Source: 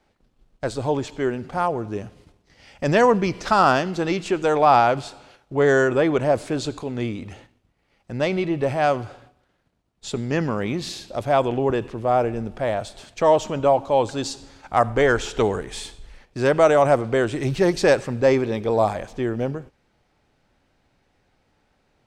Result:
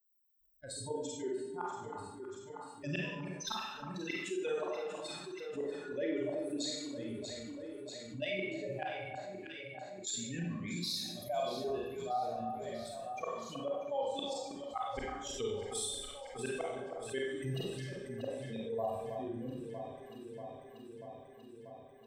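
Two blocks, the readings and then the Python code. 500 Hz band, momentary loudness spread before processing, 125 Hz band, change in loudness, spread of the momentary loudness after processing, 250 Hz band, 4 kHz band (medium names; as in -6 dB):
-18.0 dB, 14 LU, -17.5 dB, -18.0 dB, 11 LU, -16.5 dB, -8.0 dB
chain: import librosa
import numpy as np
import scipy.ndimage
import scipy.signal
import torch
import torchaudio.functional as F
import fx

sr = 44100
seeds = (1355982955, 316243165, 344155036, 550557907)

y = fx.bin_expand(x, sr, power=3.0)
y = fx.level_steps(y, sr, step_db=11)
y = fx.peak_eq(y, sr, hz=90.0, db=-8.0, octaves=0.68)
y = fx.gate_flip(y, sr, shuts_db=-26.0, range_db=-35)
y = fx.tilt_eq(y, sr, slope=1.5)
y = fx.echo_alternate(y, sr, ms=319, hz=1500.0, feedback_pct=74, wet_db=-11)
y = fx.rev_schroeder(y, sr, rt60_s=0.59, comb_ms=31, drr_db=-3.0)
y = fx.env_flatten(y, sr, amount_pct=50)
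y = y * 10.0 ** (-4.5 / 20.0)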